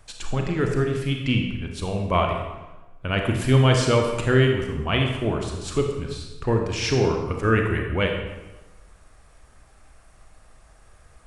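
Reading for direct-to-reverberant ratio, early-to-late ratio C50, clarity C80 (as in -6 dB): 2.0 dB, 4.0 dB, 6.0 dB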